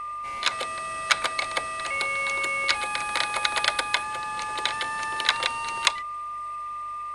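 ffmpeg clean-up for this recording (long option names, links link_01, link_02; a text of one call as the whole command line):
ffmpeg -i in.wav -af "bandreject=frequency=47.4:width_type=h:width=4,bandreject=frequency=94.8:width_type=h:width=4,bandreject=frequency=142.2:width_type=h:width=4,bandreject=frequency=1200:width=30" out.wav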